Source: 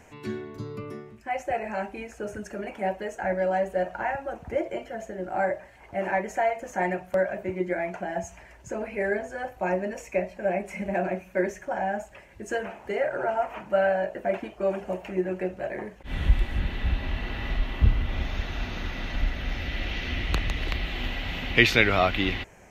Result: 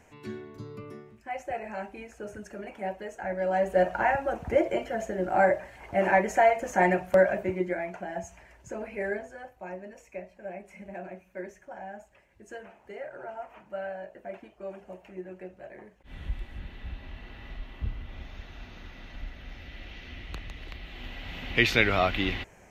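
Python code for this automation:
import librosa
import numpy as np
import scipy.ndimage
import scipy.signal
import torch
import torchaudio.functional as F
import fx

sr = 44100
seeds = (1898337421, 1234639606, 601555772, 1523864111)

y = fx.gain(x, sr, db=fx.line((3.33, -5.5), (3.79, 4.0), (7.3, 4.0), (7.86, -4.5), (9.11, -4.5), (9.56, -13.0), (20.8, -13.0), (21.77, -2.5)))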